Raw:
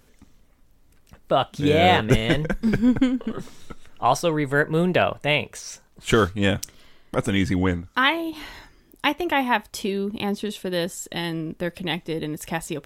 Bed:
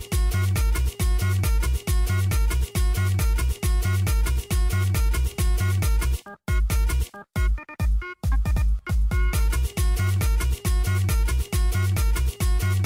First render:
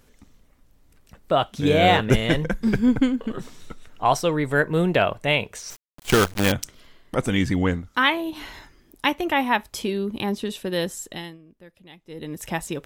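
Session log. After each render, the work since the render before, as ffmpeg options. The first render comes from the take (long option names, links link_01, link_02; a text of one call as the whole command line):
ffmpeg -i in.wav -filter_complex "[0:a]asettb=1/sr,asplit=3[link_01][link_02][link_03];[link_01]atrim=end=5.704[link_04];[link_02]atrim=start=5.7:end=6.52,asetpts=PTS-STARTPTS,afade=type=in:duration=0.004:curve=qsin,afade=type=out:start_time=0.816:duration=0.004:curve=qsin,acrusher=bits=4:dc=4:mix=0:aa=0.000001[link_05];[link_03]atrim=start=6.516[link_06];[link_04][link_05]acrossfade=duration=0.004:curve1=hsin:curve2=qsin[link_07];[link_07][link_06]acrossfade=duration=0.004:curve1=qsin:curve2=hsin,asplit=3[link_08][link_09][link_10];[link_08]atrim=end=11.38,asetpts=PTS-STARTPTS,afade=type=out:start_time=10.96:duration=0.42:silence=0.0944061[link_11];[link_09]atrim=start=11.38:end=12.04,asetpts=PTS-STARTPTS,volume=-20.5dB[link_12];[link_10]atrim=start=12.04,asetpts=PTS-STARTPTS,afade=type=in:duration=0.42:silence=0.0944061[link_13];[link_11][link_12][link_13]concat=n=3:v=0:a=1" out.wav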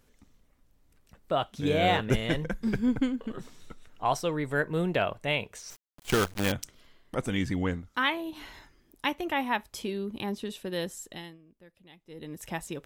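ffmpeg -i in.wav -af "volume=-7.5dB" out.wav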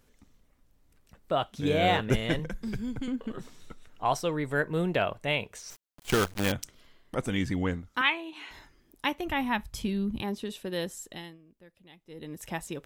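ffmpeg -i in.wav -filter_complex "[0:a]asettb=1/sr,asplit=3[link_01][link_02][link_03];[link_01]atrim=end=2.394[link_04];[link_02]atrim=start=2.39:end=3.08,asetpts=PTS-STARTPTS,afade=type=in:duration=0.004:curve=qsin,afade=type=out:start_time=0.686:duration=0.004:curve=qsin,acrossover=split=140|3000[link_05][link_06][link_07];[link_06]acompressor=threshold=-34dB:ratio=6:attack=3.2:release=140:knee=2.83:detection=peak[link_08];[link_05][link_08][link_07]amix=inputs=3:normalize=0[link_09];[link_03]atrim=start=3.076[link_10];[link_04][link_09]acrossfade=duration=0.004:curve1=hsin:curve2=qsin[link_11];[link_11][link_10]acrossfade=duration=0.004:curve1=qsin:curve2=hsin,asettb=1/sr,asplit=3[link_12][link_13][link_14];[link_12]atrim=end=8.014[link_15];[link_13]atrim=start=8.01:end=8.51,asetpts=PTS-STARTPTS,afade=type=in:duration=0.004:curve=qsin,afade=type=out:start_time=0.496:duration=0.004:curve=qsin,highpass=370,equalizer=frequency=580:width_type=q:width=4:gain=-8,equalizer=frequency=2500:width_type=q:width=4:gain=9,equalizer=frequency=5200:width_type=q:width=4:gain=-9,lowpass=frequency=8900:width=0.5412,lowpass=frequency=8900:width=1.3066[link_16];[link_14]atrim=start=8.506[link_17];[link_15][link_16]acrossfade=duration=0.004:curve1=hsin:curve2=qsin[link_18];[link_18][link_17]acrossfade=duration=0.004:curve1=qsin:curve2=hsin,asplit=3[link_19][link_20][link_21];[link_19]afade=type=out:start_time=9.24:duration=0.02[link_22];[link_20]asubboost=boost=8:cutoff=140,afade=type=in:start_time=9.24:duration=0.02,afade=type=out:start_time=10.2:duration=0.02[link_23];[link_21]afade=type=in:start_time=10.2:duration=0.02[link_24];[link_22][link_23][link_24]amix=inputs=3:normalize=0" out.wav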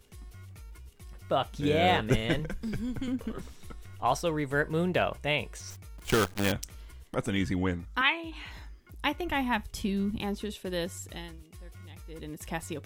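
ffmpeg -i in.wav -i bed.wav -filter_complex "[1:a]volume=-25.5dB[link_01];[0:a][link_01]amix=inputs=2:normalize=0" out.wav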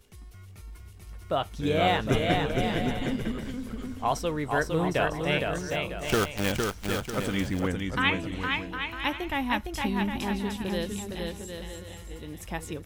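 ffmpeg -i in.wav -af "aecho=1:1:460|759|953.4|1080|1162:0.631|0.398|0.251|0.158|0.1" out.wav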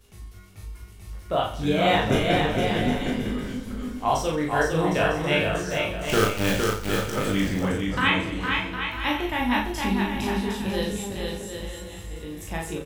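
ffmpeg -i in.wav -filter_complex "[0:a]asplit=2[link_01][link_02];[link_02]adelay=37,volume=-3dB[link_03];[link_01][link_03]amix=inputs=2:normalize=0,aecho=1:1:20|48|87.2|142.1|218.9:0.631|0.398|0.251|0.158|0.1" out.wav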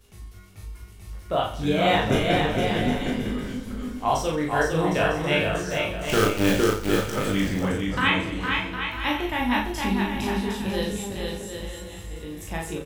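ffmpeg -i in.wav -filter_complex "[0:a]asettb=1/sr,asplit=3[link_01][link_02][link_03];[link_01]atrim=end=6.244[link_04];[link_02]atrim=start=6.24:end=7.01,asetpts=PTS-STARTPTS,afade=type=in:duration=0.004:curve=qsin,afade=type=out:start_time=0.766:duration=0.004:curve=qsin,equalizer=frequency=330:width_type=o:width=0.77:gain=7.5[link_05];[link_03]atrim=start=7.006[link_06];[link_04][link_05]acrossfade=duration=0.004:curve1=hsin:curve2=qsin[link_07];[link_07][link_06]acrossfade=duration=0.004:curve1=qsin:curve2=hsin" out.wav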